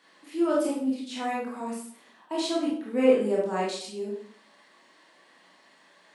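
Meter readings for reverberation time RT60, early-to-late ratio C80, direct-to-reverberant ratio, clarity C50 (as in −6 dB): 0.55 s, 7.0 dB, −5.0 dB, 2.0 dB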